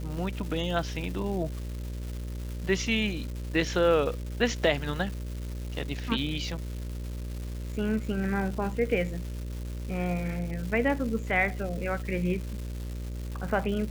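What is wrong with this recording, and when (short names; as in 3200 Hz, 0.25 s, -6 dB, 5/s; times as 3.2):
buzz 60 Hz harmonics 10 -35 dBFS
crackle 520/s -37 dBFS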